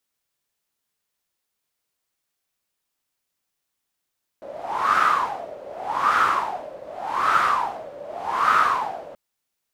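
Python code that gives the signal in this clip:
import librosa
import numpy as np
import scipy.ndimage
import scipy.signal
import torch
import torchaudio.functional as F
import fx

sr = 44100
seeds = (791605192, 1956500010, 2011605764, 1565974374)

y = fx.wind(sr, seeds[0], length_s=4.73, low_hz=560.0, high_hz=1300.0, q=8.9, gusts=4, swing_db=20.0)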